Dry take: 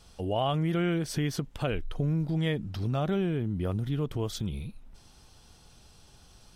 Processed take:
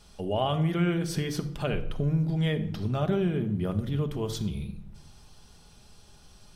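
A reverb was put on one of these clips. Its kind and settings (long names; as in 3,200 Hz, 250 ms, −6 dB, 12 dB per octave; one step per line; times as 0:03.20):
rectangular room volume 2,100 cubic metres, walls furnished, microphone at 1.3 metres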